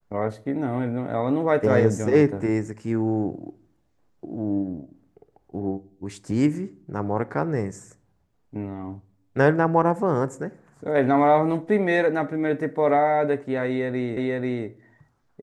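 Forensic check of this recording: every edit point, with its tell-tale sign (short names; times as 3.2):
14.17 repeat of the last 0.49 s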